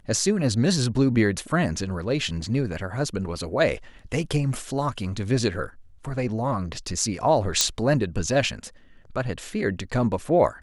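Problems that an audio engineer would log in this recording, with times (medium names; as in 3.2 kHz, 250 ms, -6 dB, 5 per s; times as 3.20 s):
7.61 s: pop -3 dBFS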